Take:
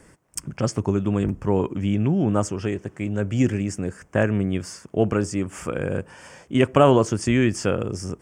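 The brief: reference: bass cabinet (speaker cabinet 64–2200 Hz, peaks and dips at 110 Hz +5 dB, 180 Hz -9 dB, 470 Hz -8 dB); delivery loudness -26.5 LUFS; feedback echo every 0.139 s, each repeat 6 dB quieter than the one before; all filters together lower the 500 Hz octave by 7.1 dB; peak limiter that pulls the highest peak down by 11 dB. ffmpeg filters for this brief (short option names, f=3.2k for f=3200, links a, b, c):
-af "equalizer=f=500:t=o:g=-5,alimiter=limit=-17dB:level=0:latency=1,highpass=f=64:w=0.5412,highpass=f=64:w=1.3066,equalizer=f=110:t=q:w=4:g=5,equalizer=f=180:t=q:w=4:g=-9,equalizer=f=470:t=q:w=4:g=-8,lowpass=f=2.2k:w=0.5412,lowpass=f=2.2k:w=1.3066,aecho=1:1:139|278|417|556|695|834:0.501|0.251|0.125|0.0626|0.0313|0.0157,volume=1.5dB"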